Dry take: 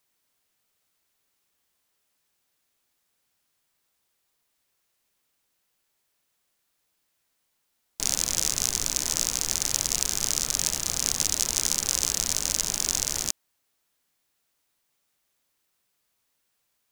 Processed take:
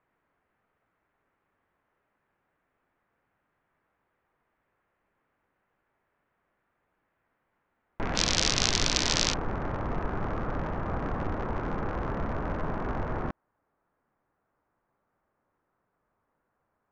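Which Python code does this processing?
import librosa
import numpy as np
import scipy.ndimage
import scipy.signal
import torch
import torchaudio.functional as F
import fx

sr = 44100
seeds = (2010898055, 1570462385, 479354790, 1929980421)

y = fx.lowpass(x, sr, hz=fx.steps((0.0, 1800.0), (8.15, 4500.0), (9.34, 1400.0)), slope=24)
y = F.gain(torch.from_numpy(y), 8.5).numpy()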